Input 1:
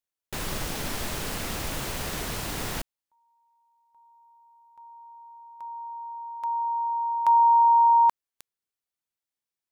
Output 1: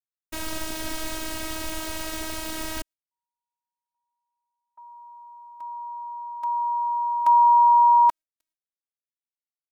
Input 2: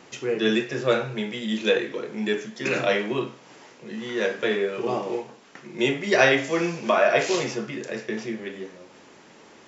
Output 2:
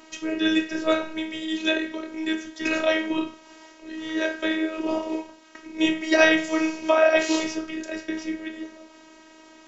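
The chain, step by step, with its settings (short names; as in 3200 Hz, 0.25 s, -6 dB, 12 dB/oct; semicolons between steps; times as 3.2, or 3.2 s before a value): gate with hold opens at -53 dBFS, range -28 dB; robotiser 317 Hz; gain +2.5 dB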